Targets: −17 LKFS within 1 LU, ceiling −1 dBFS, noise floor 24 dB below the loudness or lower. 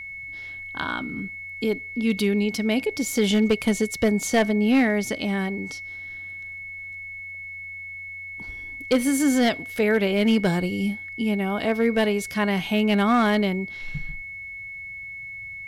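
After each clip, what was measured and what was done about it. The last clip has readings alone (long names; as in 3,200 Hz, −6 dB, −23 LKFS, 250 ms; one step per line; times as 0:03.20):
share of clipped samples 0.6%; peaks flattened at −13.0 dBFS; interfering tone 2,200 Hz; level of the tone −34 dBFS; integrated loudness −24.5 LKFS; sample peak −13.0 dBFS; target loudness −17.0 LKFS
→ clipped peaks rebuilt −13 dBFS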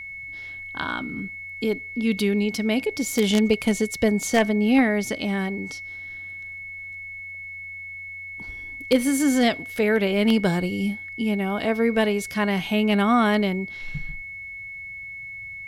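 share of clipped samples 0.0%; interfering tone 2,200 Hz; level of the tone −34 dBFS
→ notch filter 2,200 Hz, Q 30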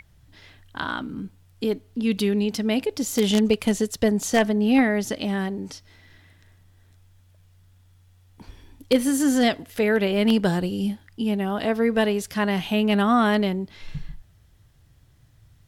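interfering tone none found; integrated loudness −23.0 LKFS; sample peak −5.0 dBFS; target loudness −17.0 LKFS
→ level +6 dB
brickwall limiter −1 dBFS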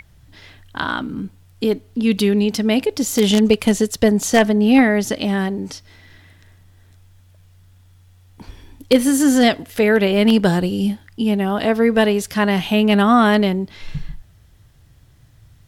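integrated loudness −17.0 LKFS; sample peak −1.0 dBFS; background noise floor −50 dBFS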